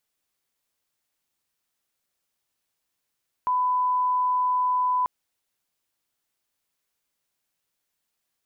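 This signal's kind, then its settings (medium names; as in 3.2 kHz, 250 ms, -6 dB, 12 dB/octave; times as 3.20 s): line-up tone -20 dBFS 1.59 s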